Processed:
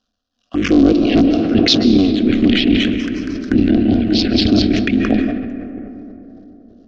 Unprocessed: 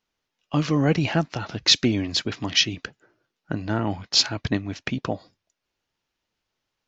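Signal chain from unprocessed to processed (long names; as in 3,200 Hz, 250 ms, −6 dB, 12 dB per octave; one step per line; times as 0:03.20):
sub-harmonics by changed cycles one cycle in 3, muted
amplitude tremolo 2.5 Hz, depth 81%
0:02.32–0:04.62: bouncing-ball delay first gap 230 ms, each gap 0.85×, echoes 5
phaser swept by the level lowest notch 370 Hz, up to 1,900 Hz, full sweep at −26 dBFS
convolution reverb RT60 3.6 s, pre-delay 120 ms, DRR 9.5 dB
soft clipping −17.5 dBFS, distortion −15 dB
low-pass filter 5,300 Hz 24 dB per octave
phaser with its sweep stopped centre 360 Hz, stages 4
hollow resonant body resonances 230/740 Hz, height 13 dB, ringing for 30 ms
boost into a limiter +18.5 dB
level that may fall only so fast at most 36 dB per second
level −2.5 dB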